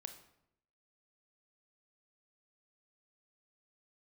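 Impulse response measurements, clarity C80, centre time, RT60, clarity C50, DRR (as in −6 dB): 13.0 dB, 12 ms, 0.75 s, 10.0 dB, 7.5 dB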